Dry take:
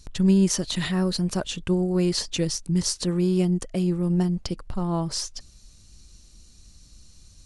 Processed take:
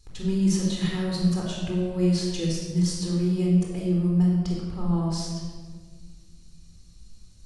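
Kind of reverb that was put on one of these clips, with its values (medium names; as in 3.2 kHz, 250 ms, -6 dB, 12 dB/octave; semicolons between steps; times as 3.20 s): simulated room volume 1800 m³, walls mixed, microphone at 4 m; trim -10.5 dB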